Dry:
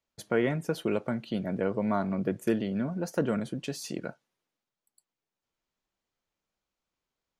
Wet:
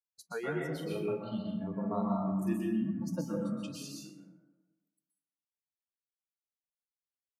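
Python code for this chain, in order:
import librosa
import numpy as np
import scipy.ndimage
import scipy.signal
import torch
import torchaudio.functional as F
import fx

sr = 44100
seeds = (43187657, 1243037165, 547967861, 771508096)

y = fx.doubler(x, sr, ms=41.0, db=-7.0, at=(0.72, 2.63))
y = fx.noise_reduce_blind(y, sr, reduce_db=26)
y = fx.rev_plate(y, sr, seeds[0], rt60_s=1.2, hf_ratio=0.4, predelay_ms=110, drr_db=-2.5)
y = y * 10.0 ** (-7.5 / 20.0)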